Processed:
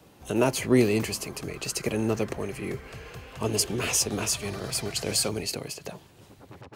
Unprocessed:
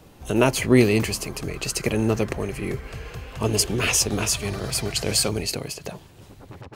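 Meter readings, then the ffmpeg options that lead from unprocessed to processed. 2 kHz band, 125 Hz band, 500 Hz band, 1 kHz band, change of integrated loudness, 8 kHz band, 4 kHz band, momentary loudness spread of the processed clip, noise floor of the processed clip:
-6.0 dB, -6.5 dB, -4.0 dB, -4.5 dB, -4.5 dB, -3.5 dB, -4.5 dB, 15 LU, -55 dBFS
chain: -filter_complex "[0:a]highpass=f=120:p=1,acrossover=split=420|1300|4100[s0][s1][s2][s3];[s2]asoftclip=type=tanh:threshold=0.0376[s4];[s0][s1][s4][s3]amix=inputs=4:normalize=0,volume=0.668"

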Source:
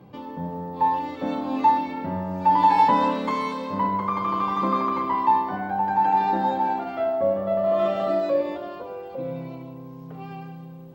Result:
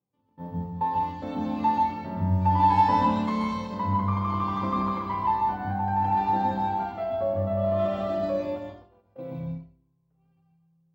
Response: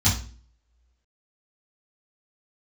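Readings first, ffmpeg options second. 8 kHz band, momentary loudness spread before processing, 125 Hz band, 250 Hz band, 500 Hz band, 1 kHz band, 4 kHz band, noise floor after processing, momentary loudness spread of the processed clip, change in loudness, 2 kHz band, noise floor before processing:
no reading, 18 LU, +6.5 dB, -1.0 dB, -5.0 dB, -3.5 dB, -4.0 dB, -69 dBFS, 14 LU, -3.0 dB, -5.0 dB, -40 dBFS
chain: -filter_complex "[0:a]agate=range=0.0251:threshold=0.0282:ratio=16:detection=peak,asplit=2[s0][s1];[1:a]atrim=start_sample=2205,adelay=117[s2];[s1][s2]afir=irnorm=-1:irlink=0,volume=0.158[s3];[s0][s3]amix=inputs=2:normalize=0,volume=0.473"

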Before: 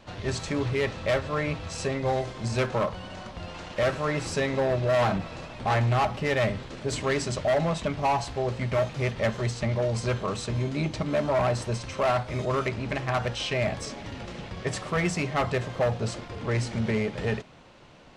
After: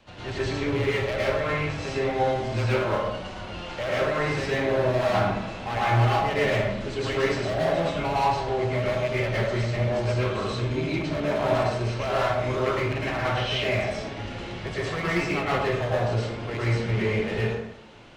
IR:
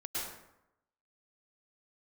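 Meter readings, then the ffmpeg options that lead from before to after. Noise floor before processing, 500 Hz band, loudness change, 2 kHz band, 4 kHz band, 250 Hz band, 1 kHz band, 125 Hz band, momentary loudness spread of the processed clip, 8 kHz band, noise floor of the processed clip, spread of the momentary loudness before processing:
-43 dBFS, +2.0 dB, +2.0 dB, +3.5 dB, +3.0 dB, +1.5 dB, +2.5 dB, +2.0 dB, 8 LU, -5.0 dB, -37 dBFS, 8 LU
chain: -filter_complex "[0:a]equalizer=f=2800:w=1.6:g=4,acrossover=split=240|530|4700[s0][s1][s2][s3];[s3]acompressor=threshold=0.00178:ratio=6[s4];[s0][s1][s2][s4]amix=inputs=4:normalize=0,asoftclip=type=hard:threshold=0.0944[s5];[1:a]atrim=start_sample=2205[s6];[s5][s6]afir=irnorm=-1:irlink=0"

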